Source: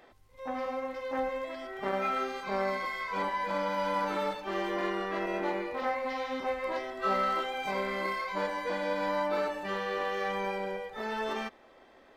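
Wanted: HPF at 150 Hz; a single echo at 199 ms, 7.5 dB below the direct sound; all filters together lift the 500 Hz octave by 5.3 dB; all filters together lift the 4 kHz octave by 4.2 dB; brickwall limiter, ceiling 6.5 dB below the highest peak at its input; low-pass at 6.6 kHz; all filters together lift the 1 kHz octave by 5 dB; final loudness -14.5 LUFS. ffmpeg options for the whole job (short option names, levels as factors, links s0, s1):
-af "highpass=150,lowpass=6600,equalizer=f=500:t=o:g=5,equalizer=f=1000:t=o:g=4.5,equalizer=f=4000:t=o:g=5.5,alimiter=limit=0.106:level=0:latency=1,aecho=1:1:199:0.422,volume=5.31"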